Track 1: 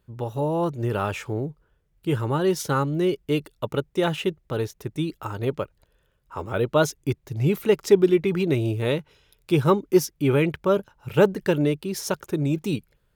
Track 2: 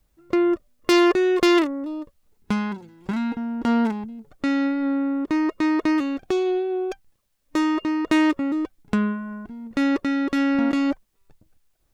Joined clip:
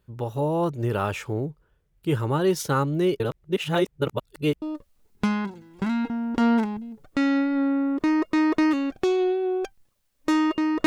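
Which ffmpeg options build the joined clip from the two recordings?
-filter_complex "[0:a]apad=whole_dur=10.86,atrim=end=10.86,asplit=2[s0][s1];[s0]atrim=end=3.202[s2];[s1]atrim=start=3.198:end=4.622,asetpts=PTS-STARTPTS,areverse[s3];[1:a]atrim=start=1.888:end=8.13[s4];[s2][s3]acrossfade=d=0.004:c1=hsin:c2=hsin[s5];[s5][s4]acrossfade=d=0.004:c1=hsin:c2=hsin"

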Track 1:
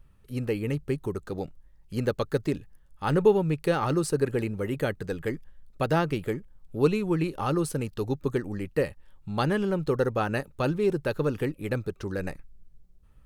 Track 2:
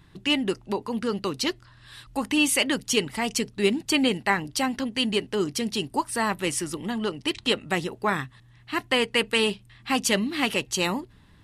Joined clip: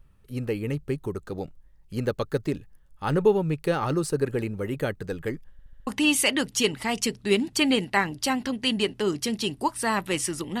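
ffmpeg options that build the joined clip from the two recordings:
-filter_complex "[0:a]apad=whole_dur=10.6,atrim=end=10.6,asplit=5[s0][s1][s2][s3][s4];[s0]atrim=end=5.592[s5];[s1]atrim=start=5.518:end=5.592[s6];[s2]atrim=start=5.518:end=5.592[s7];[s3]atrim=start=5.518:end=5.592[s8];[s4]atrim=start=5.518:end=5.592[s9];[1:a]atrim=start=2.198:end=6.93[s10];[s5][s6]acrossfade=d=0.004:c1=hsin:c2=hsin[s11];[s11][s7]acrossfade=d=0.004:c1=hsin:c2=hsin[s12];[s12][s8]acrossfade=d=0.004:c1=hsin:c2=hsin[s13];[s13][s9]acrossfade=d=0.004:c1=hsin:c2=hsin[s14];[s14][s10]acrossfade=d=0.004:c1=hsin:c2=hsin"

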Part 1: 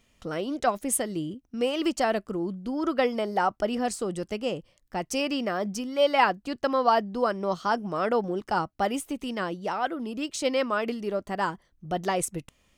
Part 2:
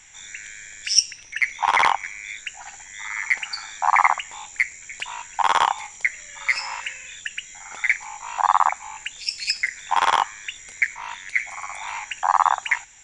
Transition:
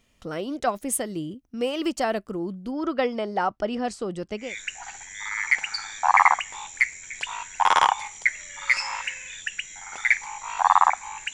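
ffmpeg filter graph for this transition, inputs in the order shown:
-filter_complex "[0:a]asettb=1/sr,asplit=3[s0][s1][s2];[s0]atrim=end=2.714[s3];[s1]atrim=start=2.71:end=4.56,asetpts=PTS-STARTPTS,afade=t=in:d=0.004:c=qsin,afade=t=out:st=1.846:d=0.004:c=qsin,lowpass=5900[s4];[s2]atrim=start=4.556[s5];[s3][s4]acrossfade=d=0.004:c1=hsin:c2=qsin[s6];[s6][s5]acrossfade=d=0.004:c1=qsin:c2=hsin,apad=whole_dur=11.33,atrim=end=11.33,atrim=end=4.56,asetpts=PTS-STARTPTS[s7];[1:a]atrim=start=2.15:end=9.12,asetpts=PTS-STARTPTS[s8];[s7][s8]acrossfade=d=0.2:c1=tri:c2=tri"

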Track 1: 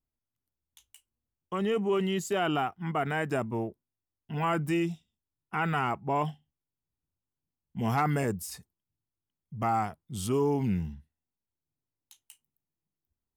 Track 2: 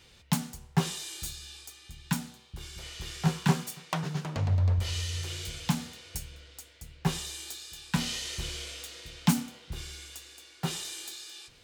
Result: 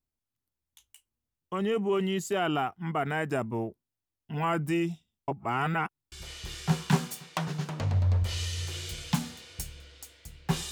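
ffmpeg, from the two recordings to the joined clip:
-filter_complex "[0:a]apad=whole_dur=10.71,atrim=end=10.71,asplit=2[s0][s1];[s0]atrim=end=5.282[s2];[s1]atrim=start=5.278:end=6.122,asetpts=PTS-STARTPTS,areverse[s3];[1:a]atrim=start=2.678:end=7.27[s4];[s2][s3]acrossfade=d=0.004:c1=hsin:c2=hsin[s5];[s5][s4]acrossfade=d=0.004:c1=hsin:c2=hsin"

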